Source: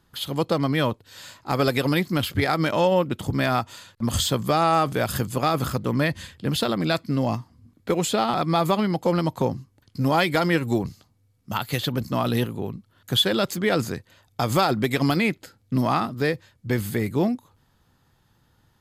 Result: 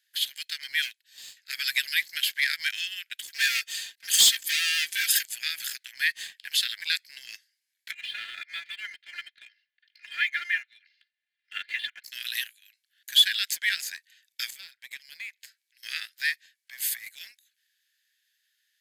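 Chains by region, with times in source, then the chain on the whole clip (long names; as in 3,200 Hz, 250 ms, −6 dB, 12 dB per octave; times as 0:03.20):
0:00.82–0:01.37: high-pass filter 560 Hz + gain into a clipping stage and back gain 24.5 dB + multiband upward and downward expander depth 100%
0:03.27–0:05.23: hard clipping −20.5 dBFS + tilt shelving filter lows −4.5 dB, about 1,100 Hz + comb filter 4.4 ms, depth 94%
0:07.91–0:12.04: Gaussian smoothing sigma 3.2 samples + comb filter 2.9 ms, depth 92% + multiband upward and downward compressor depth 40%
0:14.50–0:15.83: parametric band 2,400 Hz +2.5 dB 0.26 octaves + downward compressor 2.5 to 1, threshold −42 dBFS
0:16.67–0:17.07: high-shelf EQ 9,400 Hz +3 dB + compressor whose output falls as the input rises −30 dBFS
whole clip: Butterworth high-pass 1,600 Hz 96 dB per octave; leveller curve on the samples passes 1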